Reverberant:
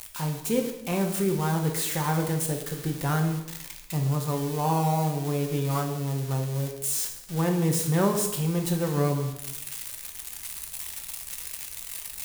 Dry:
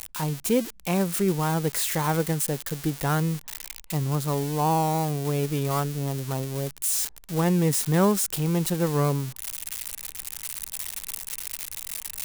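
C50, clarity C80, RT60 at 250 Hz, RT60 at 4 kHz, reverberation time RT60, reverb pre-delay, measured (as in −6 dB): 7.0 dB, 9.5 dB, 0.95 s, 0.75 s, 0.90 s, 3 ms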